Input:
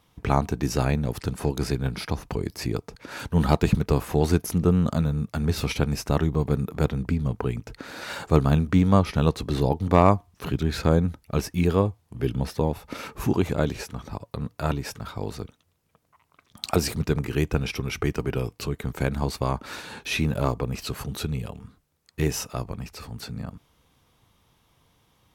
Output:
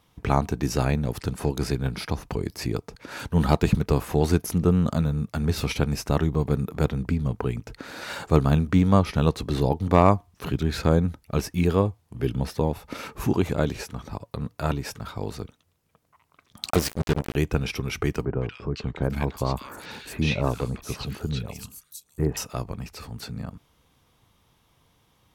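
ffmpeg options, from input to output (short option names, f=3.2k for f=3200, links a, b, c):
-filter_complex "[0:a]asettb=1/sr,asplit=3[a][b][c];[a]atrim=end=16.704[d];[b]atrim=start=16.7:end=17.36,asetpts=PTS-STARTPTS,afade=t=in:d=0.004:c=qsin,afade=t=out:st=0.656:d=0.004:c=qsin,acrusher=bits=3:mix=0:aa=0.5[e];[c]atrim=start=17.356[f];[d][e]acrossfade=d=0.004:c1=hsin:c2=qsin[g];[g][f]acrossfade=d=0.004:c1=qsin:c2=hsin,asettb=1/sr,asplit=3[h][i][j];[h]atrim=end=18.254[k];[i]atrim=start=18.25:end=22.37,asetpts=PTS-STARTPTS,afade=t=in:d=0.004:c=qsin,afade=t=out:st=4.116:d=0.004:c=qsin,acrossover=split=1500|5700[l][m][n];[m]adelay=160[o];[n]adelay=770[p];[l][o][p]amix=inputs=3:normalize=0,atrim=end_sample=181692[q];[j]atrim=start=22.366[r];[k][q]acrossfade=d=0.004:c1=hsin:c2=qsin[s];[s][r]acrossfade=d=0.004:c1=qsin:c2=hsin"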